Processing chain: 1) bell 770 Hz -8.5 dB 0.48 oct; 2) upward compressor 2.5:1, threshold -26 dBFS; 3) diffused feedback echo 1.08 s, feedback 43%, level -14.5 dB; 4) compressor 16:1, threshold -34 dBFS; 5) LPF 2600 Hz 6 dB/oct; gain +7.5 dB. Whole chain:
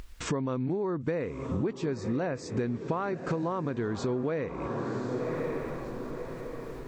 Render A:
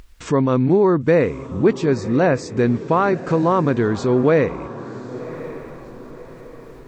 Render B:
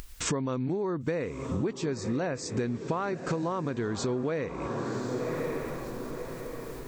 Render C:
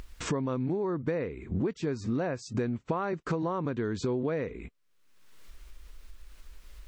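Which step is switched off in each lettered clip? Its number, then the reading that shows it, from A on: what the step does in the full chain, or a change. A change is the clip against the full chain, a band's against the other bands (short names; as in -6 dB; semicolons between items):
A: 4, mean gain reduction 8.0 dB; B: 5, 8 kHz band +8.0 dB; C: 3, momentary loudness spread change -4 LU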